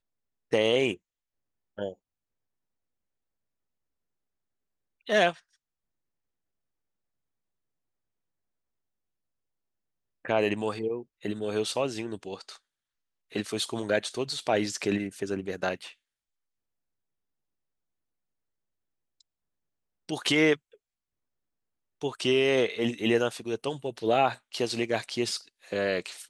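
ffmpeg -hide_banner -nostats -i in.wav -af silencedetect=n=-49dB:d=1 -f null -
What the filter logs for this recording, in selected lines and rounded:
silence_start: 1.93
silence_end: 5.07 | silence_duration: 3.13
silence_start: 5.39
silence_end: 10.25 | silence_duration: 4.85
silence_start: 15.93
silence_end: 19.21 | silence_duration: 3.28
silence_start: 20.74
silence_end: 22.01 | silence_duration: 1.27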